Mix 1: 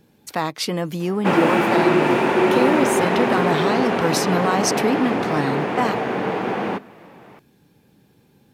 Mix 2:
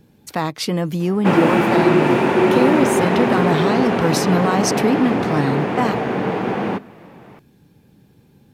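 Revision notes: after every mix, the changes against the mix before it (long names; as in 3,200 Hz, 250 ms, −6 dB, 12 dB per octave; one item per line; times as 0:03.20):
master: add low-shelf EQ 220 Hz +8.5 dB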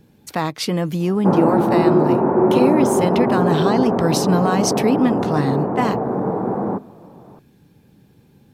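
background: add low-pass filter 1,100 Hz 24 dB per octave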